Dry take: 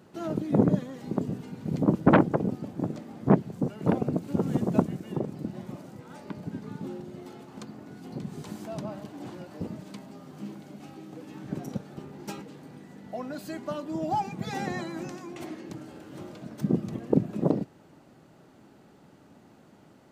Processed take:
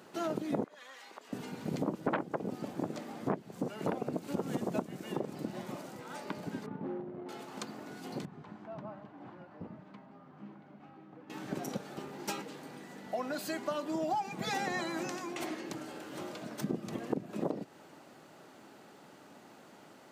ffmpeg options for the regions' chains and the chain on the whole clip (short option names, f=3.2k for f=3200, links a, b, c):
-filter_complex "[0:a]asettb=1/sr,asplit=3[a][b][c];[a]atrim=end=0.644[d];[b]atrim=start=0.64:end=1.33,asetpts=PTS-STARTPTS,afade=t=in:d=0.004:c=qsin,afade=t=out:st=0.686:d=0.004:c=qsin,highpass=1.3k,aemphasis=mode=reproduction:type=cd,acompressor=threshold=-49dB:ratio=2.5:attack=3.2:release=140:knee=1:detection=peak[e];[c]atrim=start=1.326[f];[d][e]acrossfade=d=0.004:c1=hsin:c2=qsin[g];[g][f]acrossfade=d=0.004:c1=qsin:c2=hsin,asettb=1/sr,asplit=3[h][i][j];[h]atrim=end=6.664[k];[i]atrim=start=6.66:end=7.29,asetpts=PTS-STARTPTS,afade=t=in:d=0.004:c=qsin,afade=t=out:st=0.626:d=0.004:c=qsin,highshelf=f=3.6k:g=-7,adynamicsmooth=sensitivity=3.5:basefreq=690,asplit=2[l][m];[m]adelay=31,volume=-13dB[n];[l][n]amix=inputs=2:normalize=0,atrim=end_sample=27783[o];[j]atrim=start=7.286[p];[k][o]acrossfade=d=0.004:c1=hsin:c2=qsin[q];[q][p]acrossfade=d=0.004:c1=qsin:c2=hsin,asettb=1/sr,asplit=3[r][s][t];[r]atrim=end=8.254[u];[s]atrim=start=8.25:end=11.3,asetpts=PTS-STARTPTS,afade=t=in:d=0.004:c=qsin,afade=t=out:st=3.046:d=0.004:c=qsin,lowpass=1.1k,equalizer=f=440:w=0.55:g=-11.5[v];[t]atrim=start=11.296[w];[u][v]acrossfade=d=0.004:c1=hsin:c2=qsin[x];[x][w]acrossfade=d=0.004:c1=qsin:c2=hsin,highpass=f=590:p=1,acompressor=threshold=-36dB:ratio=6,volume=5.5dB"